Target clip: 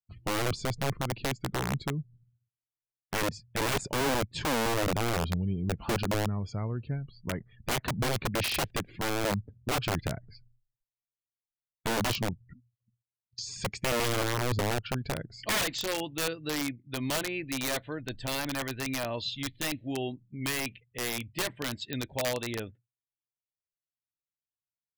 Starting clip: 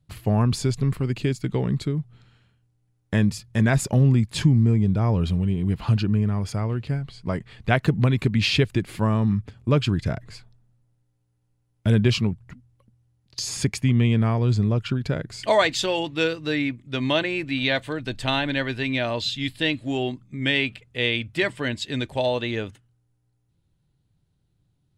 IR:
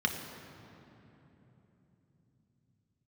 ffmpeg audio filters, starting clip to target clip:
-filter_complex "[0:a]acrossover=split=8500[a][b];[b]acompressor=threshold=-59dB:ratio=4:attack=1:release=60[c];[a][c]amix=inputs=2:normalize=0,afftdn=nr=36:nf=-41,aeval=exprs='(mod(5.96*val(0)+1,2)-1)/5.96':c=same,volume=-7.5dB"

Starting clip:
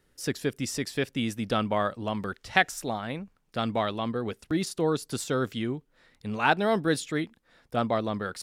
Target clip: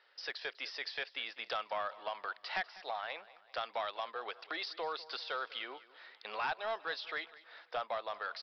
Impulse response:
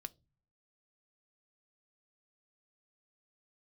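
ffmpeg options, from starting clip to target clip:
-af "highpass=f=650:w=0.5412,highpass=f=650:w=1.3066,acompressor=threshold=-45dB:ratio=2.5,aresample=11025,asoftclip=type=tanh:threshold=-34dB,aresample=44100,aecho=1:1:197|394|591|788:0.112|0.0561|0.0281|0.014,volume=6.5dB"

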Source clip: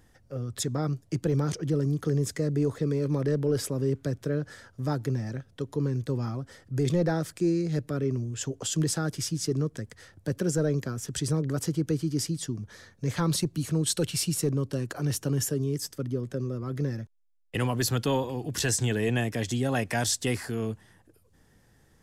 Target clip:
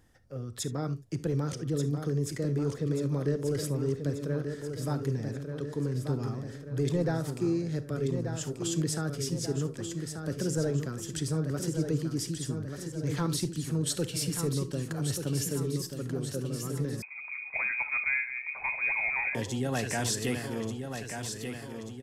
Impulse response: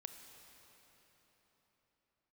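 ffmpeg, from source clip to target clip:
-filter_complex "[0:a]aecho=1:1:1185|2370|3555|4740|5925|7110|8295:0.447|0.241|0.13|0.0703|0.038|0.0205|0.0111[a];[1:a]atrim=start_sample=2205,atrim=end_sample=3528[b];[a][b]afir=irnorm=-1:irlink=0,asettb=1/sr,asplit=3[c][d][e];[c]atrim=end=17.024[f];[d]atrim=start=17.02:end=19.35,asetpts=PTS-STARTPTS,afade=t=in:d=0.004:c=qsin,afade=t=out:st=2.326:d=0.004:c=qsin,lowpass=f=2.2k:t=q:w=0.5098,lowpass=f=2.2k:t=q:w=0.6013,lowpass=f=2.2k:t=q:w=0.9,lowpass=f=2.2k:t=q:w=2.563,afreqshift=-2600[g];[e]atrim=start=19.346[h];[f][g]acrossfade=d=0.004:c1=hsin:c2=qsin[i];[i][h]acrossfade=d=0.004:c1=qsin:c2=hsin,volume=1.5dB"

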